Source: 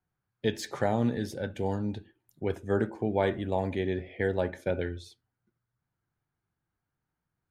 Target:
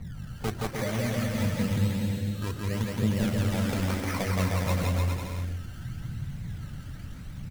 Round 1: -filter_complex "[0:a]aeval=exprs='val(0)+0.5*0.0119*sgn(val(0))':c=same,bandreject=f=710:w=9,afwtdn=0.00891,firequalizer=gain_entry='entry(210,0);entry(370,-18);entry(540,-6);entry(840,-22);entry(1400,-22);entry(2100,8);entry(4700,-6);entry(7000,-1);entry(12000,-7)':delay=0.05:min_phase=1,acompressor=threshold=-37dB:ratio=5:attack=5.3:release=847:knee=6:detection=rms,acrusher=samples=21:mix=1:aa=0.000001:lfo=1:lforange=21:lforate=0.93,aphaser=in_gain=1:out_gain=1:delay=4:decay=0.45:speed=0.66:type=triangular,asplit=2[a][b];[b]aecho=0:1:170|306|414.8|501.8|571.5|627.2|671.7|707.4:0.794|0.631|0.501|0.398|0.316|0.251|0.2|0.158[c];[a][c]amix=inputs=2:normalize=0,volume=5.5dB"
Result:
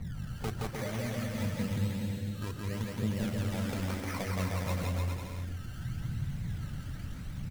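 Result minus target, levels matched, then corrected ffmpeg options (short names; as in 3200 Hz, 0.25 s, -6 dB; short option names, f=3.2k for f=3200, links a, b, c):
compressor: peak gain reduction +6.5 dB
-filter_complex "[0:a]aeval=exprs='val(0)+0.5*0.0119*sgn(val(0))':c=same,bandreject=f=710:w=9,afwtdn=0.00891,firequalizer=gain_entry='entry(210,0);entry(370,-18);entry(540,-6);entry(840,-22);entry(1400,-22);entry(2100,8);entry(4700,-6);entry(7000,-1);entry(12000,-7)':delay=0.05:min_phase=1,acompressor=threshold=-29dB:ratio=5:attack=5.3:release=847:knee=6:detection=rms,acrusher=samples=21:mix=1:aa=0.000001:lfo=1:lforange=21:lforate=0.93,aphaser=in_gain=1:out_gain=1:delay=4:decay=0.45:speed=0.66:type=triangular,asplit=2[a][b];[b]aecho=0:1:170|306|414.8|501.8|571.5|627.2|671.7|707.4:0.794|0.631|0.501|0.398|0.316|0.251|0.2|0.158[c];[a][c]amix=inputs=2:normalize=0,volume=5.5dB"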